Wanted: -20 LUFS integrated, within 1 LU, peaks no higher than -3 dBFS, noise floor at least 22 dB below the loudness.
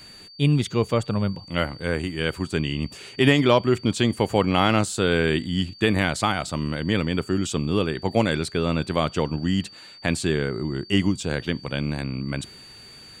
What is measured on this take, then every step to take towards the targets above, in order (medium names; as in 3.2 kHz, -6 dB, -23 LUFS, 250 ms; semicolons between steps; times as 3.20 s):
steady tone 4.6 kHz; tone level -44 dBFS; loudness -24.0 LUFS; peak level -4.0 dBFS; loudness target -20.0 LUFS
-> band-stop 4.6 kHz, Q 30; trim +4 dB; peak limiter -3 dBFS